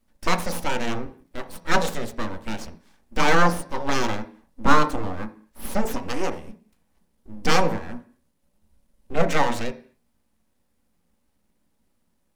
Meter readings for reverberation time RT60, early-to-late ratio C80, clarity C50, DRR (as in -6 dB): 0.45 s, 18.5 dB, 13.5 dB, 5.5 dB